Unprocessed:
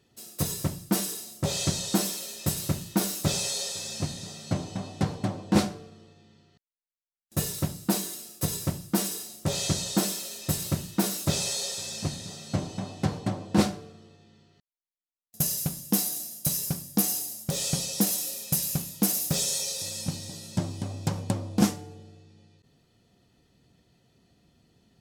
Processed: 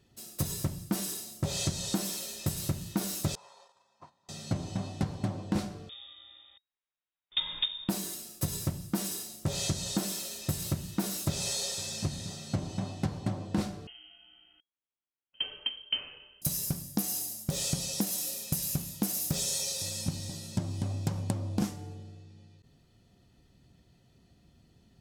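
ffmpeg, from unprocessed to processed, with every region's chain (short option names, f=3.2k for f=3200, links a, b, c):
-filter_complex "[0:a]asettb=1/sr,asplit=3[a][b][c];[a]atrim=end=3.354[d];[b]atrim=start=3.35:end=4.29,asetpts=PTS-STARTPTS,afade=t=in:d=0.004:c=qsin,afade=t=out:st=0.936:d=0.004:c=qsin,bandpass=f=1k:t=q:w=6,agate=range=-10dB:threshold=-57dB:ratio=16:release=100:detection=peak[e];[c]atrim=start=4.286[f];[d][e]acrossfade=d=0.004:c1=hsin:c2=qsin[g];[g][f]acrossfade=d=0.004:c1=qsin:c2=hsin,asettb=1/sr,asplit=3[h][i][j];[h]atrim=end=5.894[k];[i]atrim=start=5.89:end=7.89,asetpts=PTS-STARTPTS,afade=t=in:d=0.004:c=qsin,afade=t=out:st=1.996:d=0.004:c=qsin,acontrast=35,lowpass=f=3.2k:t=q:w=0.5098,lowpass=f=3.2k:t=q:w=0.6013,lowpass=f=3.2k:t=q:w=0.9,lowpass=f=3.2k:t=q:w=2.563,afreqshift=-3800[l];[j]atrim=start=7.886[m];[k][l]acrossfade=d=0.004:c1=hsin:c2=qsin[n];[n][m]acrossfade=d=0.004:c1=qsin:c2=hsin,asettb=1/sr,asplit=3[o][p][q];[o]atrim=end=13.874[r];[p]atrim=start=13.87:end=16.42,asetpts=PTS-STARTPTS,afade=t=in:d=0.004:c=qsin,afade=t=out:st=2.546:d=0.004:c=qsin,lowpass=f=2.8k:t=q:w=0.5098,lowpass=f=2.8k:t=q:w=0.6013,lowpass=f=2.8k:t=q:w=0.9,lowpass=f=2.8k:t=q:w=2.563,afreqshift=-3300,equalizer=f=270:w=0.98:g=9[s];[q]atrim=start=16.416[t];[r][s]acrossfade=d=0.004:c1=hsin:c2=qsin[u];[u][t]acrossfade=d=0.004:c1=qsin:c2=hsin,lowshelf=f=97:g=10.5,bandreject=f=460:w=15,acompressor=threshold=-25dB:ratio=6,volume=-1.5dB"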